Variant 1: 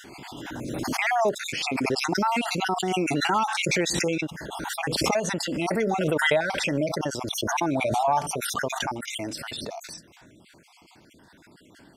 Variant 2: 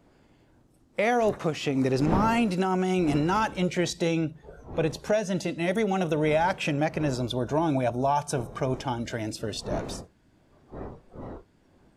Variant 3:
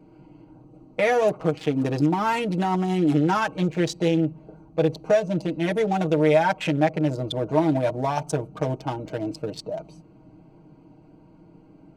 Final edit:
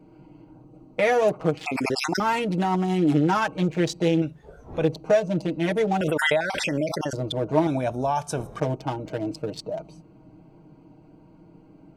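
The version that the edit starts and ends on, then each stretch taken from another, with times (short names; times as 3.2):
3
1.66–2.2 from 1
4.22–4.84 from 2
6.01–7.13 from 1
7.67–8.6 from 2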